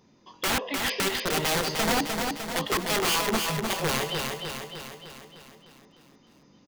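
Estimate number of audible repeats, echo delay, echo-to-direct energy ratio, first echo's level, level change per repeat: 7, 303 ms, −3.0 dB, −4.5 dB, −5.0 dB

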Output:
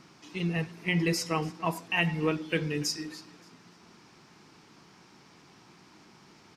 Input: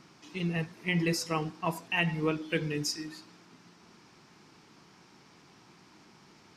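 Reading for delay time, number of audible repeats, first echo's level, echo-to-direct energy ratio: 288 ms, 2, −21.0 dB, −20.5 dB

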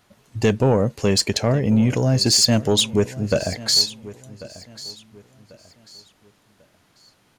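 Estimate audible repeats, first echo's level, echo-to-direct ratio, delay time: 2, −18.0 dB, −17.5 dB, 1,092 ms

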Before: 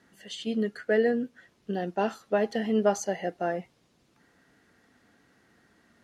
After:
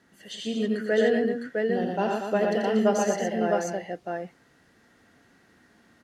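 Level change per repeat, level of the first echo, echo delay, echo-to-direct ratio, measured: repeats not evenly spaced, −7.0 dB, 86 ms, 1.0 dB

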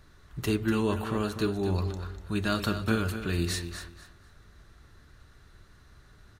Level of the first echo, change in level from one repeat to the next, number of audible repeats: −10.0 dB, −13.0 dB, 2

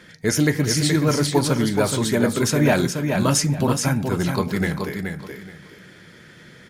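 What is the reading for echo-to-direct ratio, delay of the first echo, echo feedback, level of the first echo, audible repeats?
−5.5 dB, 425 ms, 23%, −5.5 dB, 3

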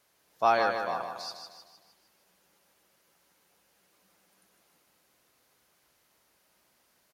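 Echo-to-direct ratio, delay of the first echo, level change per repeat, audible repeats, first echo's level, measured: −5.5 dB, 154 ms, −6.5 dB, 5, −6.5 dB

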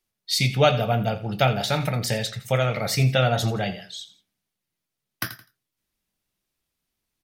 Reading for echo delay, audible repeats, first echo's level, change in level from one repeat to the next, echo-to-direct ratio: 84 ms, 2, −15.5 dB, −8.5 dB, −15.0 dB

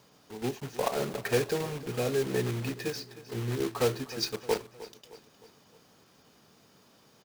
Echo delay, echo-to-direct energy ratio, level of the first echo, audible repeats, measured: 309 ms, −15.5 dB, −16.5 dB, 3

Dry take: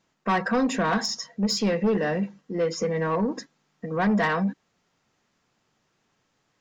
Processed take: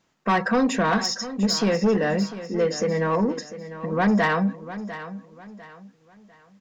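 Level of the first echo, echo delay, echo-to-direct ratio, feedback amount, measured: −13.5 dB, 699 ms, −13.0 dB, 33%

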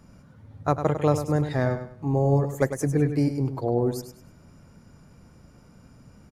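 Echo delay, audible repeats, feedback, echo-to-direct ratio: 101 ms, 3, 30%, −9.0 dB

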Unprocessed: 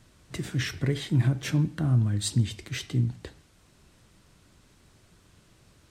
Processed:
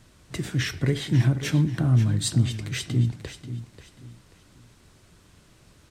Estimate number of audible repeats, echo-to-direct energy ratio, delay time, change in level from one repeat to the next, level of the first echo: 3, −11.5 dB, 537 ms, −10.5 dB, −12.0 dB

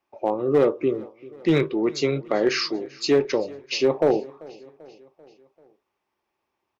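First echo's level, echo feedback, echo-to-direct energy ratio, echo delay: −22.0 dB, 56%, −20.5 dB, 390 ms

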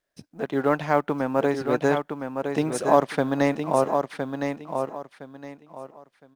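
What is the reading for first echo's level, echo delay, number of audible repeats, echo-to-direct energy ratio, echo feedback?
−6.0 dB, 1,013 ms, 3, −5.5 dB, 25%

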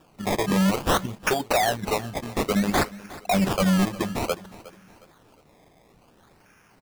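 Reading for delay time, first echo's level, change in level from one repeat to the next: 361 ms, −18.5 dB, −8.5 dB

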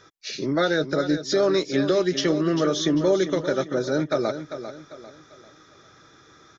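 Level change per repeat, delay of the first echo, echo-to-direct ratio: −8.5 dB, 396 ms, −10.0 dB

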